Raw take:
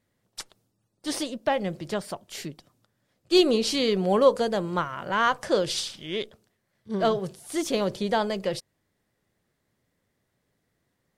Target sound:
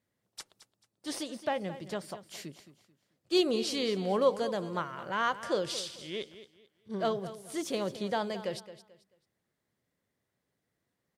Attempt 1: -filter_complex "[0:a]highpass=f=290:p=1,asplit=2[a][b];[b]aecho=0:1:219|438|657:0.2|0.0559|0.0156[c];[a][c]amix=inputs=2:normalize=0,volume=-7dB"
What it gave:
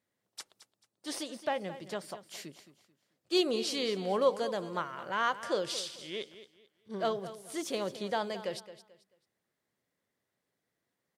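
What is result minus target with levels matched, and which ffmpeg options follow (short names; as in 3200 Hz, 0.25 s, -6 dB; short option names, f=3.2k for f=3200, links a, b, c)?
125 Hz band -3.5 dB
-filter_complex "[0:a]highpass=f=84:p=1,asplit=2[a][b];[b]aecho=0:1:219|438|657:0.2|0.0559|0.0156[c];[a][c]amix=inputs=2:normalize=0,volume=-7dB"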